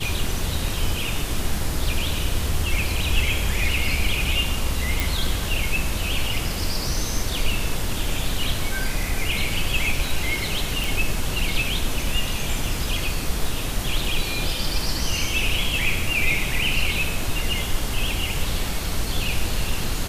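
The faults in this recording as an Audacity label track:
5.000000	5.000000	click
10.840000	10.840000	click

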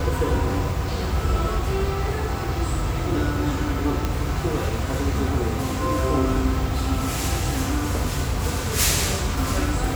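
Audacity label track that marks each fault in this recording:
4.050000	4.050000	click −10 dBFS

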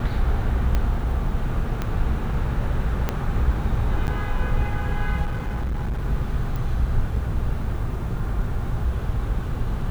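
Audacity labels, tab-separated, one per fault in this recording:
0.750000	0.750000	click −11 dBFS
1.820000	1.820000	click −13 dBFS
3.090000	3.090000	click −9 dBFS
4.070000	4.080000	drop-out 9.8 ms
5.250000	6.060000	clipping −22 dBFS
6.560000	6.560000	click

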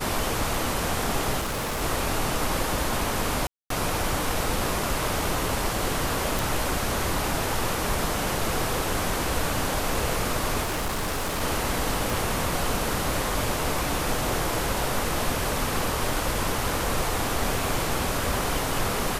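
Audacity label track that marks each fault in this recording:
1.400000	1.820000	clipping −25.5 dBFS
3.470000	3.700000	drop-out 233 ms
6.390000	6.390000	click
10.620000	11.420000	clipping −24 dBFS
12.100000	12.100000	click

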